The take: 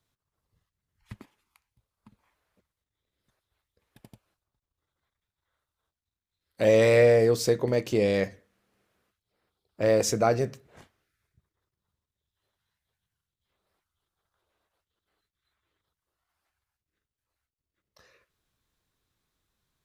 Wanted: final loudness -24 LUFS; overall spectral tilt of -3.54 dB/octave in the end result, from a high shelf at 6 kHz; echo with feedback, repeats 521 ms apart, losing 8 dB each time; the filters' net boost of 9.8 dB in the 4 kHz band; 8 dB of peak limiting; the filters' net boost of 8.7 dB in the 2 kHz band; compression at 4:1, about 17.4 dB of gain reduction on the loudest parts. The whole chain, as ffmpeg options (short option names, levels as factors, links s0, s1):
-af "equalizer=f=2000:t=o:g=7,equalizer=f=4000:t=o:g=7.5,highshelf=f=6000:g=8.5,acompressor=threshold=0.0158:ratio=4,alimiter=level_in=1.33:limit=0.0631:level=0:latency=1,volume=0.75,aecho=1:1:521|1042|1563|2084|2605:0.398|0.159|0.0637|0.0255|0.0102,volume=6.68"